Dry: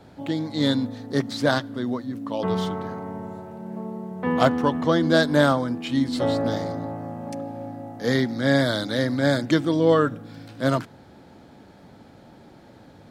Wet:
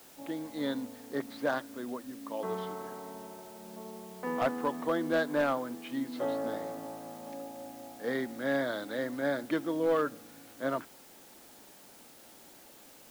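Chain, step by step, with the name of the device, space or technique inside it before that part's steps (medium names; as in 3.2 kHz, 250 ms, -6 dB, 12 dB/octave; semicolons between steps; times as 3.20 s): aircraft radio (band-pass 300–2400 Hz; hard clipper -13.5 dBFS, distortion -19 dB; white noise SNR 21 dB); trim -8 dB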